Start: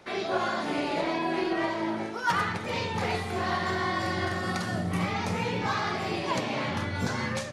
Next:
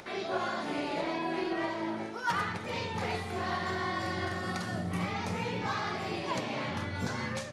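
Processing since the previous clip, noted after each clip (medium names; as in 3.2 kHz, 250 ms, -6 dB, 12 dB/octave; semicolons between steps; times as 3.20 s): upward compressor, threshold -37 dBFS; trim -4.5 dB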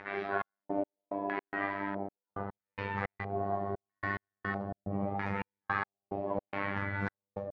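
robot voice 99.4 Hz; LFO low-pass square 0.77 Hz 640–1800 Hz; trance gate "xxx..x..xx.x" 108 bpm -60 dB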